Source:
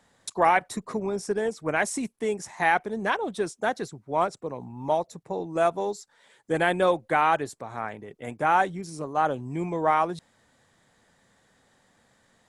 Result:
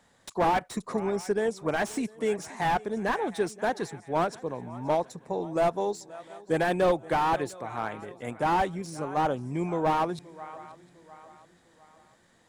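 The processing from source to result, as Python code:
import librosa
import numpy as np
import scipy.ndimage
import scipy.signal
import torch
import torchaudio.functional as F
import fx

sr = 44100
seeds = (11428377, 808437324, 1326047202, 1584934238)

y = fx.echo_swing(x, sr, ms=703, ratio=3, feedback_pct=39, wet_db=-21.0)
y = fx.slew_limit(y, sr, full_power_hz=75.0)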